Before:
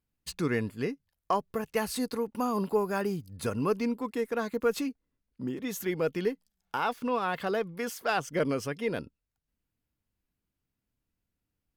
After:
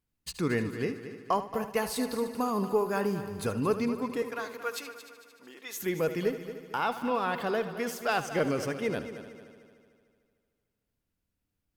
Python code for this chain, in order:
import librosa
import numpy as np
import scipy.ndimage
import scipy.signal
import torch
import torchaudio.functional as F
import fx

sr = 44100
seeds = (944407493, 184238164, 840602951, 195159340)

p1 = fx.highpass(x, sr, hz=860.0, slope=12, at=(4.22, 5.75))
y = p1 + fx.echo_heads(p1, sr, ms=75, heads='first and third', feedback_pct=59, wet_db=-13, dry=0)